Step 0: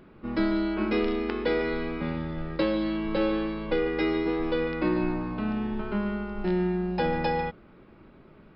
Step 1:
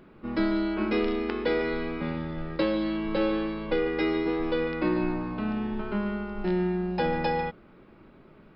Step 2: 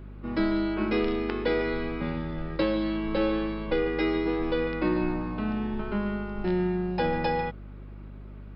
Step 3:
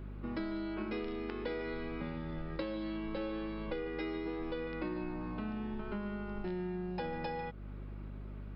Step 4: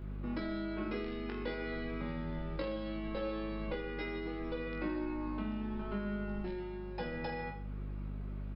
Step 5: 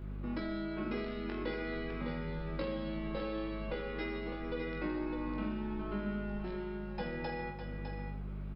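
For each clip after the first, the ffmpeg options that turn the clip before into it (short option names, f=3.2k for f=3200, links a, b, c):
-af "equalizer=f=66:t=o:w=1.7:g=-3.5"
-af "aeval=exprs='val(0)+0.00891*(sin(2*PI*50*n/s)+sin(2*PI*2*50*n/s)/2+sin(2*PI*3*50*n/s)/3+sin(2*PI*4*50*n/s)/4+sin(2*PI*5*50*n/s)/5)':c=same"
-af "acompressor=threshold=-35dB:ratio=4,volume=-2dB"
-af "aecho=1:1:20|46|79.8|123.7|180.9:0.631|0.398|0.251|0.158|0.1,volume=-1.5dB"
-af "aecho=1:1:606:0.422"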